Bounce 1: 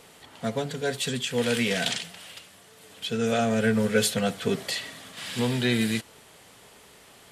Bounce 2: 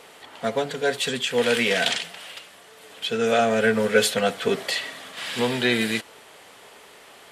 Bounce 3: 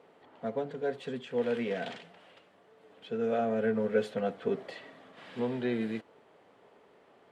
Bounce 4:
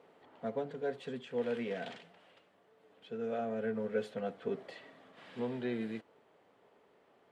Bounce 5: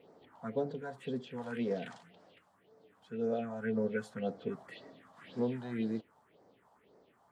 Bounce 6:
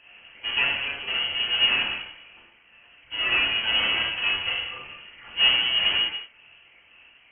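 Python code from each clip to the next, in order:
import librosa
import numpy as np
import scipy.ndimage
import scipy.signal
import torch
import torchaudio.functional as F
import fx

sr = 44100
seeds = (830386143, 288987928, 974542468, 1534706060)

y1 = fx.bass_treble(x, sr, bass_db=-13, treble_db=-6)
y1 = F.gain(torch.from_numpy(y1), 6.5).numpy()
y2 = fx.bandpass_q(y1, sr, hz=250.0, q=0.5)
y2 = F.gain(torch.from_numpy(y2), -6.5).numpy()
y3 = fx.rider(y2, sr, range_db=10, speed_s=2.0)
y3 = F.gain(torch.from_numpy(y3), -5.5).numpy()
y4 = fx.phaser_stages(y3, sr, stages=4, low_hz=370.0, high_hz=2800.0, hz=1.9, feedback_pct=40)
y4 = F.gain(torch.from_numpy(y4), 3.5).numpy()
y5 = fx.halfwave_hold(y4, sr)
y5 = fx.rev_gated(y5, sr, seeds[0], gate_ms=310, shape='falling', drr_db=-7.5)
y5 = fx.freq_invert(y5, sr, carrier_hz=3100)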